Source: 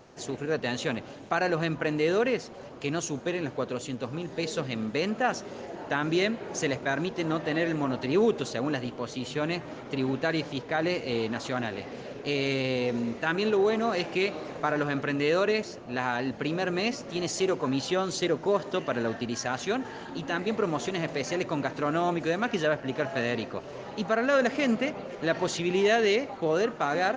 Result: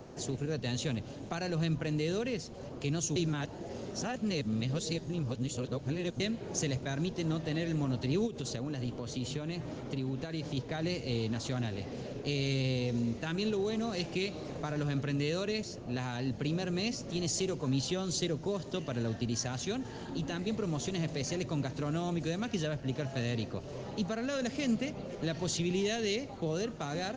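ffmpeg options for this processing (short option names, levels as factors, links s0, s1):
-filter_complex "[0:a]asplit=3[s0][s1][s2];[s0]afade=t=out:st=8.26:d=0.02[s3];[s1]acompressor=threshold=0.0316:ratio=5:attack=3.2:release=140:knee=1:detection=peak,afade=t=in:st=8.26:d=0.02,afade=t=out:st=10.56:d=0.02[s4];[s2]afade=t=in:st=10.56:d=0.02[s5];[s3][s4][s5]amix=inputs=3:normalize=0,asplit=3[s6][s7][s8];[s6]atrim=end=3.162[s9];[s7]atrim=start=3.158:end=6.202,asetpts=PTS-STARTPTS,areverse[s10];[s8]atrim=start=6.198[s11];[s9][s10]acrossfade=d=0.004:c1=hsin:c2=hsin[s12];[s12][s11]acrossfade=d=0.004:c1=hsin:c2=hsin,highshelf=f=2700:g=9.5,acrossover=split=140|3000[s13][s14][s15];[s14]acompressor=threshold=0.00316:ratio=2[s16];[s13][s16][s15]amix=inputs=3:normalize=0,tiltshelf=f=940:g=8"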